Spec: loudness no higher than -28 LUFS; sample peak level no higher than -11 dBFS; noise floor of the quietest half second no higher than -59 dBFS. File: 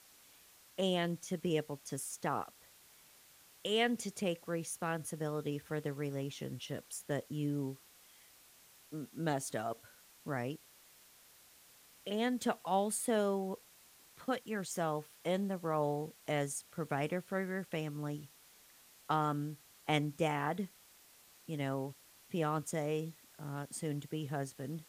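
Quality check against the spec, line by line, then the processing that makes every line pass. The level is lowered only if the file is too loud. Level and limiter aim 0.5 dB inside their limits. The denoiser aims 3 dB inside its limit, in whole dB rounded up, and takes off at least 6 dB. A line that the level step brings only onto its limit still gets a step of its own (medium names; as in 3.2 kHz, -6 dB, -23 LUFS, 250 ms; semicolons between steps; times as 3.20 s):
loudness -37.5 LUFS: pass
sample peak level -18.5 dBFS: pass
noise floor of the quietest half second -62 dBFS: pass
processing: none needed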